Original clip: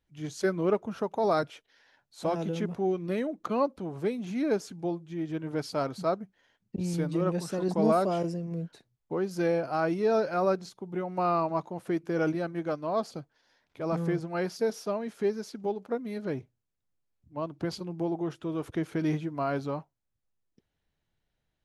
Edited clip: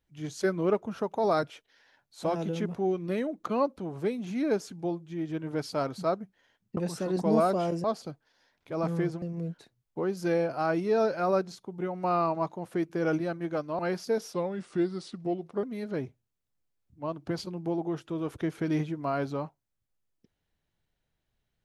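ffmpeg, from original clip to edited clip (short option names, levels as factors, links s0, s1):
-filter_complex "[0:a]asplit=7[s0][s1][s2][s3][s4][s5][s6];[s0]atrim=end=6.772[s7];[s1]atrim=start=7.288:end=8.362[s8];[s2]atrim=start=12.928:end=14.312[s9];[s3]atrim=start=8.358:end=12.932[s10];[s4]atrim=start=14.308:end=14.854[s11];[s5]atrim=start=14.85:end=15.97,asetpts=PTS-STARTPTS,asetrate=37926,aresample=44100[s12];[s6]atrim=start=15.966[s13];[s7][s8]acrossfade=d=0.004:c1=hsin:c2=hsin[s14];[s14][s9]acrossfade=d=0.004:c1=hsin:c2=hsin[s15];[s15][s10]acrossfade=d=0.004:c1=hsin:c2=hsin[s16];[s16][s11]acrossfade=d=0.004:c1=hsin:c2=hsin[s17];[s17][s12]acrossfade=d=0.004:c1=hsin:c2=hsin[s18];[s18][s13]acrossfade=d=0.004:c1=hsin:c2=hsin"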